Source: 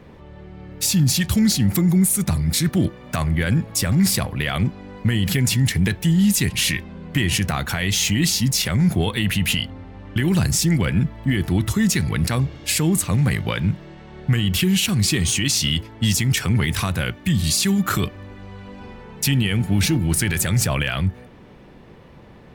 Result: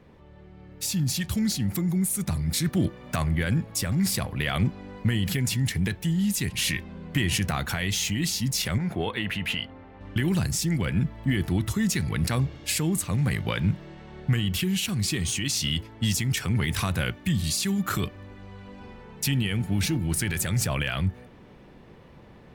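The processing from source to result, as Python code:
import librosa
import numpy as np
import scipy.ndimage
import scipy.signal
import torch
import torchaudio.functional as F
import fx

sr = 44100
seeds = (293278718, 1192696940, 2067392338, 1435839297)

y = fx.bass_treble(x, sr, bass_db=-10, treble_db=-15, at=(8.78, 10.01))
y = fx.rider(y, sr, range_db=3, speed_s=0.5)
y = y * 10.0 ** (-6.0 / 20.0)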